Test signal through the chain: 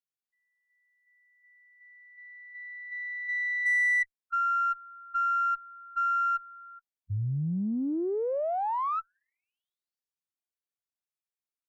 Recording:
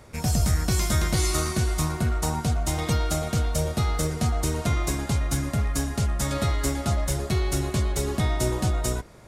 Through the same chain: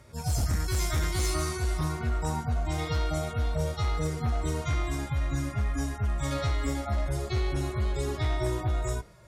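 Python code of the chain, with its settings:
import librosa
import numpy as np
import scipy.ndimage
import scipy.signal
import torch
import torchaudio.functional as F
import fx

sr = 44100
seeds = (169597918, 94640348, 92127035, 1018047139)

y = fx.hpss_only(x, sr, part='harmonic')
y = fx.cheby_harmonics(y, sr, harmonics=(5, 6, 7, 8), levels_db=(-7, -38, -14, -31), full_scale_db=-12.0)
y = y * librosa.db_to_amplitude(-8.0)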